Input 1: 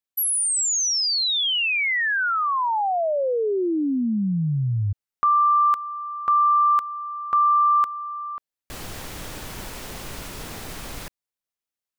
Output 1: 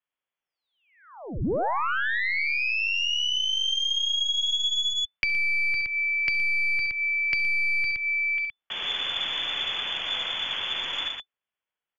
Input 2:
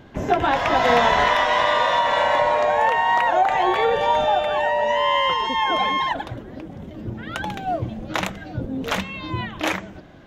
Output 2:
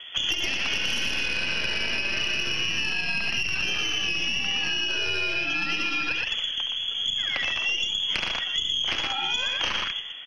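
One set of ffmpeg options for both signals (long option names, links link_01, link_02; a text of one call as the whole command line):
ffmpeg -i in.wav -filter_complex "[0:a]lowpass=frequency=3000:width_type=q:width=0.5098,lowpass=frequency=3000:width_type=q:width=0.6013,lowpass=frequency=3000:width_type=q:width=0.9,lowpass=frequency=3000:width_type=q:width=2.563,afreqshift=-3500,aeval=exprs='0.668*(cos(1*acos(clip(val(0)/0.668,-1,1)))-cos(1*PI/2))+0.15*(cos(2*acos(clip(val(0)/0.668,-1,1)))-cos(2*PI/2))+0.0133*(cos(3*acos(clip(val(0)/0.668,-1,1)))-cos(3*PI/2))+0.168*(cos(4*acos(clip(val(0)/0.668,-1,1)))-cos(4*PI/2))':channel_layout=same,aecho=1:1:54|68|74|118:0.1|0.316|0.133|0.562,acrossover=split=150|530|2600[link_01][link_02][link_03][link_04];[link_03]alimiter=limit=-18dB:level=0:latency=1:release=233[link_05];[link_01][link_02][link_05][link_04]amix=inputs=4:normalize=0,acompressor=threshold=-27dB:ratio=10:attack=5.4:release=264:knee=1:detection=peak,volume=5dB" out.wav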